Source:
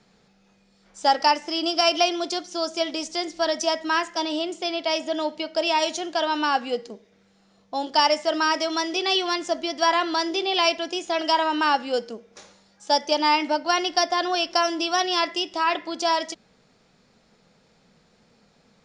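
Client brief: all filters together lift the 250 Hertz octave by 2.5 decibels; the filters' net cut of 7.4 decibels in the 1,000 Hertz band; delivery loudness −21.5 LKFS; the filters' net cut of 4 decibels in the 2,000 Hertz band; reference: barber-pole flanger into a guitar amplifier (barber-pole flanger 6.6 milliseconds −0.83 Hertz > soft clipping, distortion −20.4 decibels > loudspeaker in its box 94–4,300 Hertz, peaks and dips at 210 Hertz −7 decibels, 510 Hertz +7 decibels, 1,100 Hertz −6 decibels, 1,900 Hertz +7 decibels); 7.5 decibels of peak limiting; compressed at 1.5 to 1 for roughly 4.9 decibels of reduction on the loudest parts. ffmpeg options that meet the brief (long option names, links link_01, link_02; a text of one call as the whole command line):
ffmpeg -i in.wav -filter_complex "[0:a]equalizer=frequency=250:width_type=o:gain=5,equalizer=frequency=1000:width_type=o:gain=-7.5,equalizer=frequency=2000:width_type=o:gain=-6.5,acompressor=threshold=-32dB:ratio=1.5,alimiter=limit=-20.5dB:level=0:latency=1,asplit=2[link_01][link_02];[link_02]adelay=6.6,afreqshift=-0.83[link_03];[link_01][link_03]amix=inputs=2:normalize=1,asoftclip=threshold=-25.5dB,highpass=94,equalizer=frequency=210:width_type=q:width=4:gain=-7,equalizer=frequency=510:width_type=q:width=4:gain=7,equalizer=frequency=1100:width_type=q:width=4:gain=-6,equalizer=frequency=1900:width_type=q:width=4:gain=7,lowpass=frequency=4300:width=0.5412,lowpass=frequency=4300:width=1.3066,volume=14dB" out.wav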